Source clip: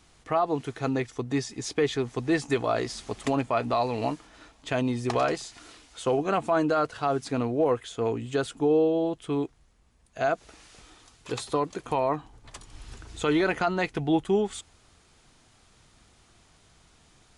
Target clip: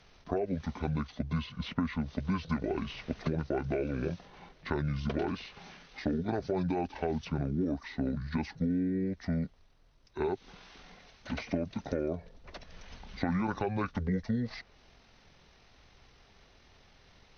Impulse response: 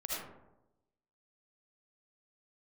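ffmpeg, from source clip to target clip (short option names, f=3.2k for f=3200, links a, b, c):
-filter_complex "[0:a]acrossover=split=110|4400[a][b][c];[a]acompressor=threshold=-48dB:ratio=4[d];[b]acompressor=threshold=-29dB:ratio=4[e];[c]acompressor=threshold=-49dB:ratio=4[f];[d][e][f]amix=inputs=3:normalize=0,asetrate=25476,aresample=44100,atempo=1.73107"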